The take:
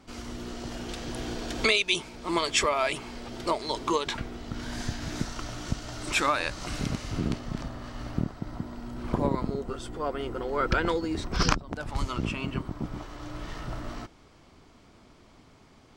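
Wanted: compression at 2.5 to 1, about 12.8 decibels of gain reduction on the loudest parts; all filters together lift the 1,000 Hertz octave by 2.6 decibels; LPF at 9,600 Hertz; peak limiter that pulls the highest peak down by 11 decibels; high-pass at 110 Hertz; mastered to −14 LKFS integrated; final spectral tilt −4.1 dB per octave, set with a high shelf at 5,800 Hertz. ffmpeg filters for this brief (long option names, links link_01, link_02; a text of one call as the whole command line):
ffmpeg -i in.wav -af "highpass=110,lowpass=9600,equalizer=frequency=1000:width_type=o:gain=3,highshelf=frequency=5800:gain=5.5,acompressor=threshold=-38dB:ratio=2.5,volume=26.5dB,alimiter=limit=-2dB:level=0:latency=1" out.wav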